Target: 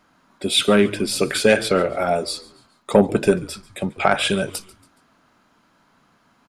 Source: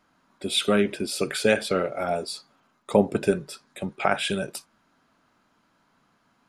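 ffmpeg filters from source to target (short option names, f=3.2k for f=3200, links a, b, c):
-filter_complex "[0:a]asplit=4[a][b][c][d];[b]adelay=140,afreqshift=-99,volume=-21dB[e];[c]adelay=280,afreqshift=-198,volume=-28.3dB[f];[d]adelay=420,afreqshift=-297,volume=-35.7dB[g];[a][e][f][g]amix=inputs=4:normalize=0,acontrast=64"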